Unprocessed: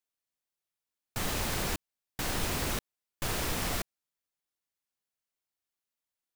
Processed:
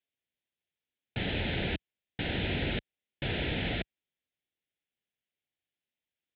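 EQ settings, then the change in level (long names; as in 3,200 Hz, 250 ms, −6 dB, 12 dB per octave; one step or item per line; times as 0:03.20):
high-pass filter 51 Hz
elliptic low-pass filter 3,600 Hz, stop band 50 dB
phaser with its sweep stopped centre 2,700 Hz, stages 4
+5.0 dB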